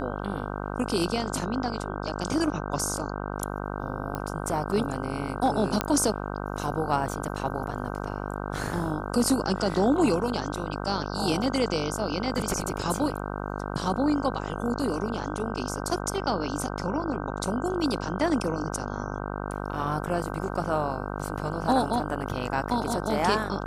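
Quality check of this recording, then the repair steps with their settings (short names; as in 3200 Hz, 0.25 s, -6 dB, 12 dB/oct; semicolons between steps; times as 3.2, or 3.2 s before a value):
buzz 50 Hz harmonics 31 -33 dBFS
4.15 pop -18 dBFS
5.81 pop -8 dBFS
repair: de-click; de-hum 50 Hz, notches 31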